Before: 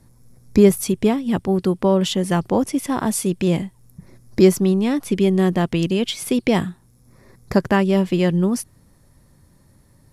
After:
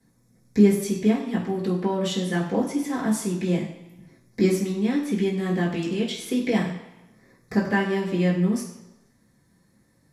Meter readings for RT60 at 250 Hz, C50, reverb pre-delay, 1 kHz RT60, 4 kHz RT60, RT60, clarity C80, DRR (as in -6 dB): 0.90 s, 6.5 dB, 3 ms, 1.0 s, 0.95 s, 0.95 s, 9.0 dB, -11.0 dB